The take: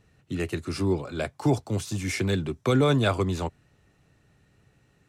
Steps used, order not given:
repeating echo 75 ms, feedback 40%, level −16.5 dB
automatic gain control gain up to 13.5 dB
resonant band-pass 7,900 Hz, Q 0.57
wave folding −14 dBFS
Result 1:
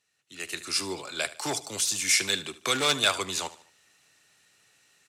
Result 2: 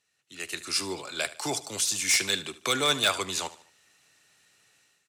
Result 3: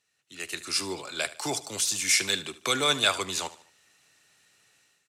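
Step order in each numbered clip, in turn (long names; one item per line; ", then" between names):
repeating echo, then wave folding, then resonant band-pass, then automatic gain control
resonant band-pass, then automatic gain control, then repeating echo, then wave folding
resonant band-pass, then wave folding, then automatic gain control, then repeating echo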